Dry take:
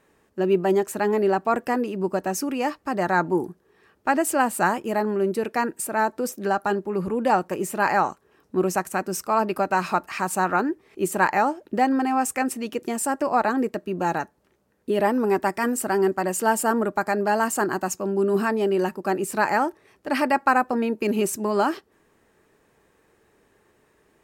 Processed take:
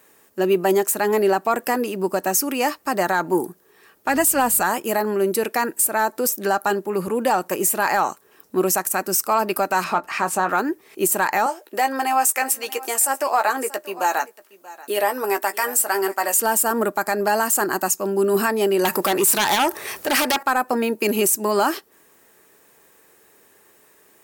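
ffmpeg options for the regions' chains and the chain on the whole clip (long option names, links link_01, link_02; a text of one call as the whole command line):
ffmpeg -i in.wav -filter_complex "[0:a]asettb=1/sr,asplit=3[link_01][link_02][link_03];[link_01]atrim=end=4.084[link_04];[link_02]atrim=start=4.08:end=4.62,asetpts=PTS-STARTPTS,afade=type=in:duration=0.004:curve=qsin,afade=type=out:start_time=0.536:duration=0.004:curve=qsin,aecho=1:1:4.1:0.71,atrim=end_sample=23814,aeval=exprs='val(0)+0.0158*(sin(2*PI*50*n/s)+sin(2*PI*2*50*n/s)/2+sin(2*PI*3*50*n/s)/3+sin(2*PI*4*50*n/s)/4+sin(2*PI*5*50*n/s)/5)':channel_layout=same[link_05];[link_03]atrim=start=4.616[link_06];[link_04][link_05]acrossfade=duration=0.004:curve1=hsin:curve2=qsin[link_07];[link_07][link_06]acrossfade=duration=0.004:curve1=qsin:curve2=hsin,asettb=1/sr,asplit=3[link_08][link_09][link_10];[link_08]atrim=end=9.844[link_11];[link_09]atrim=start=9.84:end=10.49,asetpts=PTS-STARTPTS,afade=type=in:duration=0.004:curve=qsin,afade=type=out:start_time=0.646:duration=0.004:curve=qsin,aemphasis=mode=reproduction:type=75fm,asplit=2[link_12][link_13];[link_13]adelay=18,volume=-10dB[link_14];[link_12][link_14]amix=inputs=2:normalize=0,atrim=end_sample=28665[link_15];[link_10]atrim=start=10.486[link_16];[link_11][link_15]acrossfade=duration=0.004:curve1=hsin:curve2=qsin[link_17];[link_17][link_16]acrossfade=duration=0.004:curve1=qsin:curve2=hsin,asettb=1/sr,asplit=3[link_18][link_19][link_20];[link_18]atrim=end=11.464[link_21];[link_19]atrim=start=11.46:end=16.38,asetpts=PTS-STARTPTS,afade=type=in:duration=0.004:curve=qsin,afade=type=out:start_time=4.916:duration=0.004:curve=qsin,highpass=520,asplit=2[link_22][link_23];[link_23]adelay=15,volume=-9dB[link_24];[link_22][link_24]amix=inputs=2:normalize=0,atrim=end_sample=216972,aecho=1:1:633:0.1,atrim=end_sample=216972[link_25];[link_20]atrim=start=16.376[link_26];[link_21][link_25]acrossfade=duration=0.004:curve1=hsin:curve2=qsin[link_27];[link_27][link_26]acrossfade=duration=0.004:curve1=qsin:curve2=hsin,asettb=1/sr,asplit=3[link_28][link_29][link_30];[link_28]atrim=end=18.854[link_31];[link_29]atrim=start=18.85:end=20.43,asetpts=PTS-STARTPTS,afade=type=in:duration=0.004:curve=qsin,afade=type=out:start_time=1.576:duration=0.004:curve=qsin,acompressor=threshold=-39dB:ratio=2:attack=3.2:release=140:knee=1:detection=peak,equalizer=frequency=260:width=1.1:gain=-6,aeval=exprs='0.15*sin(PI/2*5.62*val(0)/0.15)':channel_layout=same[link_32];[link_30]atrim=start=20.426[link_33];[link_31][link_32]acrossfade=duration=0.004:curve1=hsin:curve2=qsin[link_34];[link_34][link_33]acrossfade=duration=0.004:curve1=qsin:curve2=hsin,aemphasis=mode=production:type=bsi,acontrast=36,alimiter=limit=-9dB:level=0:latency=1:release=114" out.wav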